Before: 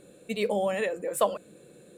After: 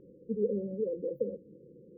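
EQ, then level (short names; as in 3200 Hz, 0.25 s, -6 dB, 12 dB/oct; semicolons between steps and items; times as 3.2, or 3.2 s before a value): brick-wall FIR band-stop 550–14000 Hz; air absorption 490 m; 0.0 dB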